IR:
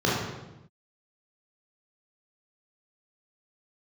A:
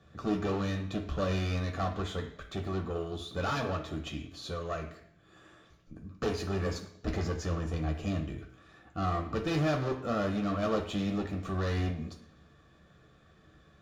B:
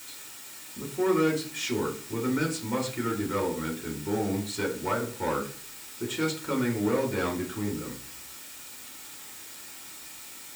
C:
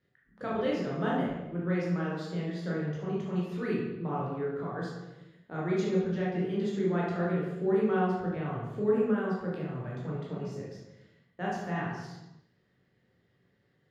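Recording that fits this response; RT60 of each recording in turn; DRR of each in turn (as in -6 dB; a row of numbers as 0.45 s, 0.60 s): C; 0.65 s, 0.45 s, 0.95 s; 2.5 dB, 0.5 dB, -6.5 dB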